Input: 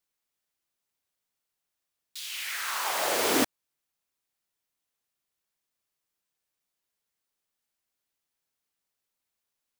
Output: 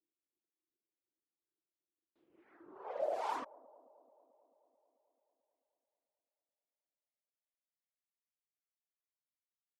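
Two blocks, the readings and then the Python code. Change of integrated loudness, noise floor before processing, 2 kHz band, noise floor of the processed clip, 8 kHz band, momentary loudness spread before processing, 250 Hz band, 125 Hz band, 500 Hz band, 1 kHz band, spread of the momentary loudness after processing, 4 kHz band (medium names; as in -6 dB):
-12.5 dB, -85 dBFS, -23.0 dB, under -85 dBFS, -33.0 dB, 13 LU, -23.5 dB, under -25 dB, -8.0 dB, -9.0 dB, 15 LU, -28.0 dB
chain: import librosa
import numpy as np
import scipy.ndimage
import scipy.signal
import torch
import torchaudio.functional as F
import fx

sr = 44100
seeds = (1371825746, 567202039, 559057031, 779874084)

y = fx.diode_clip(x, sr, knee_db=-24.5)
y = fx.dereverb_blind(y, sr, rt60_s=1.5)
y = fx.high_shelf(y, sr, hz=5100.0, db=8.5)
y = fx.rider(y, sr, range_db=10, speed_s=2.0)
y = fx.harmonic_tremolo(y, sr, hz=2.6, depth_pct=70, crossover_hz=560.0)
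y = fx.filter_sweep_bandpass(y, sr, from_hz=330.0, to_hz=2100.0, start_s=2.68, end_s=3.85, q=7.6)
y = fx.echo_wet_bandpass(y, sr, ms=219, feedback_pct=71, hz=410.0, wet_db=-20.5)
y = fx.env_lowpass(y, sr, base_hz=800.0, full_db=-42.0)
y = F.gain(torch.from_numpy(y), 10.0).numpy()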